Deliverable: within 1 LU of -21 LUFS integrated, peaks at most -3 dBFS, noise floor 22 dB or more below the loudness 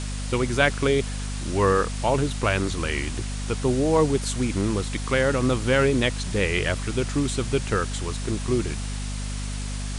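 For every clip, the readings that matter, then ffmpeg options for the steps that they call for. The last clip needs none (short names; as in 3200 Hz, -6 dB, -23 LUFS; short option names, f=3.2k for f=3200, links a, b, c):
hum 50 Hz; harmonics up to 250 Hz; hum level -28 dBFS; noise floor -30 dBFS; noise floor target -47 dBFS; loudness -24.5 LUFS; peak -4.0 dBFS; loudness target -21.0 LUFS
-> -af "bandreject=f=50:t=h:w=4,bandreject=f=100:t=h:w=4,bandreject=f=150:t=h:w=4,bandreject=f=200:t=h:w=4,bandreject=f=250:t=h:w=4"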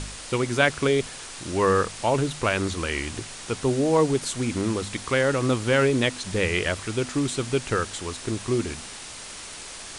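hum none; noise floor -39 dBFS; noise floor target -47 dBFS
-> -af "afftdn=nr=8:nf=-39"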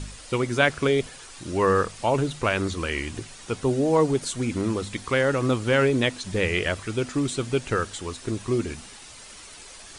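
noise floor -45 dBFS; noise floor target -47 dBFS
-> -af "afftdn=nr=6:nf=-45"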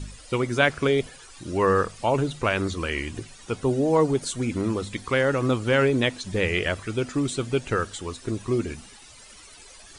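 noise floor -48 dBFS; loudness -25.0 LUFS; peak -4.0 dBFS; loudness target -21.0 LUFS
-> -af "volume=4dB,alimiter=limit=-3dB:level=0:latency=1"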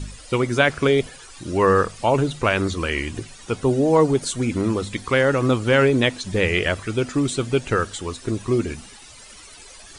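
loudness -21.0 LUFS; peak -3.0 dBFS; noise floor -44 dBFS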